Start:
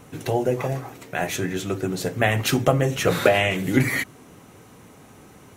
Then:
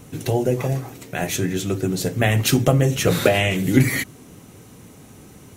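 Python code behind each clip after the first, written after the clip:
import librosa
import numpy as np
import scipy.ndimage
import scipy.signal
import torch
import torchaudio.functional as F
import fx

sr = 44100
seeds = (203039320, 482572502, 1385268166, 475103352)

y = fx.peak_eq(x, sr, hz=1100.0, db=-8.5, octaves=2.8)
y = F.gain(torch.from_numpy(y), 6.0).numpy()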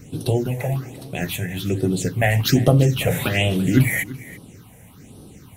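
y = fx.phaser_stages(x, sr, stages=6, low_hz=300.0, high_hz=2100.0, hz=1.2, feedback_pct=20)
y = y + 10.0 ** (-18.0 / 20.0) * np.pad(y, (int(338 * sr / 1000.0), 0))[:len(y)]
y = F.gain(torch.from_numpy(y), 1.5).numpy()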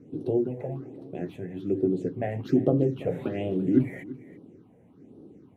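y = fx.bandpass_q(x, sr, hz=340.0, q=2.0)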